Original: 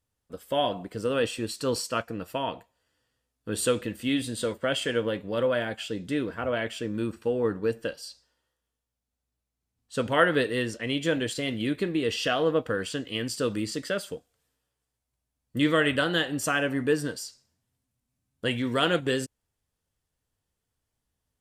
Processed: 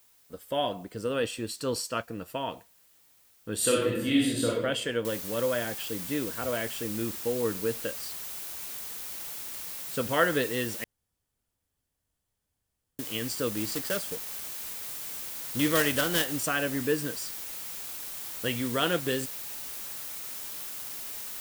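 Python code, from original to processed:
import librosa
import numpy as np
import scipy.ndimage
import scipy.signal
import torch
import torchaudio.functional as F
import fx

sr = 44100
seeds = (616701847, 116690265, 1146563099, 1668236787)

y = fx.reverb_throw(x, sr, start_s=3.56, length_s=0.96, rt60_s=0.88, drr_db=-4.0)
y = fx.noise_floor_step(y, sr, seeds[0], at_s=5.05, before_db=-63, after_db=-40, tilt_db=0.0)
y = fx.block_float(y, sr, bits=3, at=(13.57, 16.43))
y = fx.edit(y, sr, fx.room_tone_fill(start_s=10.84, length_s=2.15), tone=tone)
y = fx.high_shelf(y, sr, hz=10000.0, db=7.0)
y = y * 10.0 ** (-3.0 / 20.0)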